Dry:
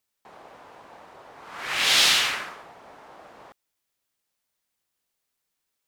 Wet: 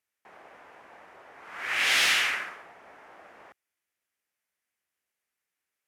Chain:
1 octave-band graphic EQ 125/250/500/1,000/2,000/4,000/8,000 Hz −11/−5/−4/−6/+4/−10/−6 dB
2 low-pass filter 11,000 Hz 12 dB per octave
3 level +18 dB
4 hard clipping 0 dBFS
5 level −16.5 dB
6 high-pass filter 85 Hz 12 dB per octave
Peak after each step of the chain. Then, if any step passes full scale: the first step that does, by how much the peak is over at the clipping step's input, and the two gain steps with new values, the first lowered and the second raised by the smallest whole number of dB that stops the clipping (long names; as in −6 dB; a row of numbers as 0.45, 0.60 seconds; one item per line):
−12.5, −12.5, +5.5, 0.0, −16.5, −16.0 dBFS
step 3, 5.5 dB
step 3 +12 dB, step 5 −10.5 dB